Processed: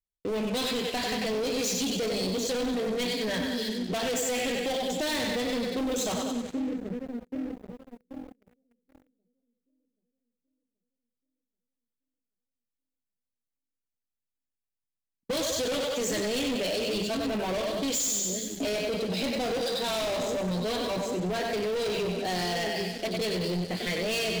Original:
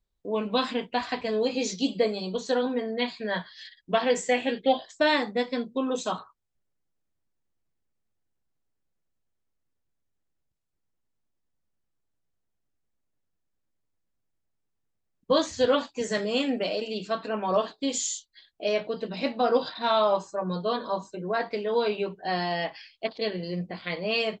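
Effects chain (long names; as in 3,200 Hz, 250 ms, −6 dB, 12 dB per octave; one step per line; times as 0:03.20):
high-shelf EQ 6,600 Hz +9.5 dB
echo with a time of its own for lows and highs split 390 Hz, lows 780 ms, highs 95 ms, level −7 dB
leveller curve on the samples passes 5
parametric band 1,100 Hz −11 dB 0.91 octaves
soft clipping −14 dBFS, distortion −17 dB
downward compressor, threshold −20 dBFS, peak gain reduction 4 dB
level −7.5 dB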